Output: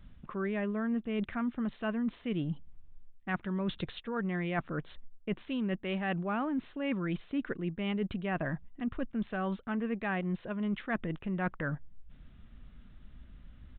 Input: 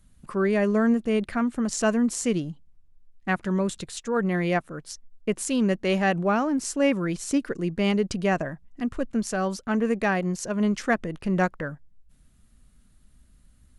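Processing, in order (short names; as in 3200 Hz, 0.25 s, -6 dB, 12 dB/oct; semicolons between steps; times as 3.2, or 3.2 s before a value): dynamic EQ 510 Hz, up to -5 dB, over -37 dBFS, Q 1.5; reverse; compressor 6:1, threshold -37 dBFS, peak gain reduction 17 dB; reverse; downsampling 8000 Hz; gain +5.5 dB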